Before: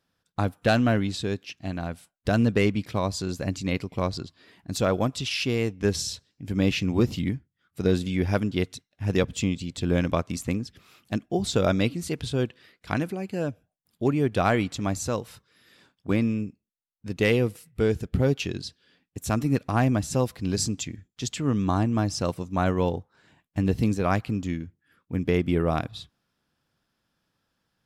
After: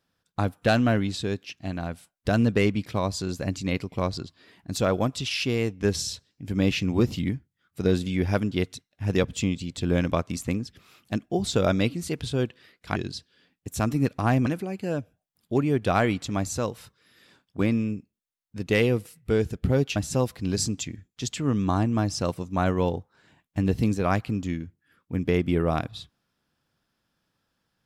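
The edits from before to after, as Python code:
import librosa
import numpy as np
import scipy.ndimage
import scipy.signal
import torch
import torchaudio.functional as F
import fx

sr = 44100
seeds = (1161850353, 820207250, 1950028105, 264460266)

y = fx.edit(x, sr, fx.move(start_s=18.46, length_s=1.5, to_s=12.96), tone=tone)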